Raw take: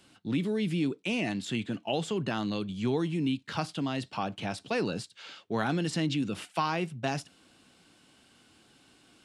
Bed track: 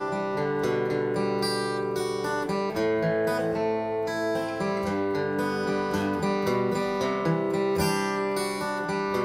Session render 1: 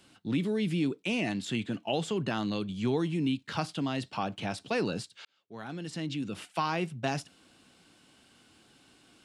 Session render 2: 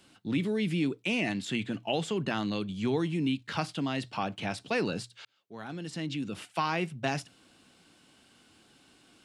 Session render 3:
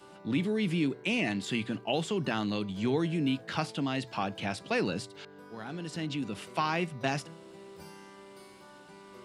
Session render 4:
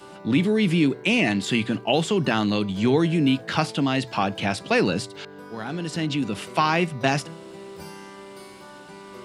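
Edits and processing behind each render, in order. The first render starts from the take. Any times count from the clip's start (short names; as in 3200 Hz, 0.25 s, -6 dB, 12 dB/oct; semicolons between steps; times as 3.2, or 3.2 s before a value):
5.25–6.82 fade in
notches 60/120 Hz; dynamic EQ 2100 Hz, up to +4 dB, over -46 dBFS, Q 1.8
add bed track -24 dB
gain +9 dB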